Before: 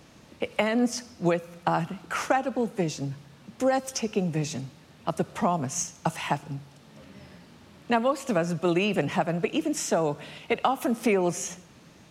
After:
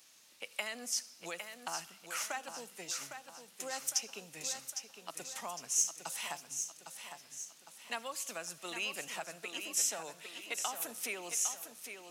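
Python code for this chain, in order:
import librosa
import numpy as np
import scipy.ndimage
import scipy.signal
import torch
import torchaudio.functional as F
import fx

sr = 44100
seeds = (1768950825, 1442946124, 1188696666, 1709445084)

y = np.diff(x, prepend=0.0)
y = fx.echo_feedback(y, sr, ms=807, feedback_pct=46, wet_db=-8.0)
y = y * 10.0 ** (1.5 / 20.0)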